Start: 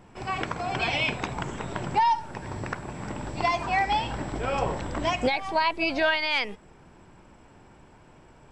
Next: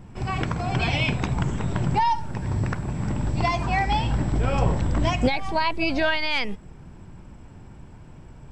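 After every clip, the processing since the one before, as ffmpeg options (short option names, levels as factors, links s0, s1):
-af "bass=f=250:g=13,treble=f=4000:g=2"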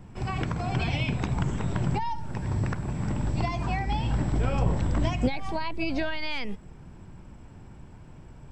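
-filter_complex "[0:a]acrossover=split=370[s0][s1];[s1]acompressor=threshold=0.0398:ratio=6[s2];[s0][s2]amix=inputs=2:normalize=0,volume=0.75"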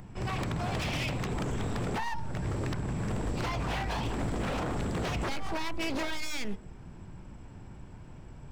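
-af "aeval=exprs='0.0473*(abs(mod(val(0)/0.0473+3,4)-2)-1)':c=same,bandreject=f=76.85:t=h:w=4,bandreject=f=153.7:t=h:w=4,bandreject=f=230.55:t=h:w=4,bandreject=f=307.4:t=h:w=4,bandreject=f=384.25:t=h:w=4,bandreject=f=461.1:t=h:w=4,bandreject=f=537.95:t=h:w=4,bandreject=f=614.8:t=h:w=4,bandreject=f=691.65:t=h:w=4,bandreject=f=768.5:t=h:w=4,bandreject=f=845.35:t=h:w=4,bandreject=f=922.2:t=h:w=4,bandreject=f=999.05:t=h:w=4,bandreject=f=1075.9:t=h:w=4,bandreject=f=1152.75:t=h:w=4,bandreject=f=1229.6:t=h:w=4,bandreject=f=1306.45:t=h:w=4,bandreject=f=1383.3:t=h:w=4,bandreject=f=1460.15:t=h:w=4,bandreject=f=1537:t=h:w=4,acompressor=mode=upward:threshold=0.00316:ratio=2.5"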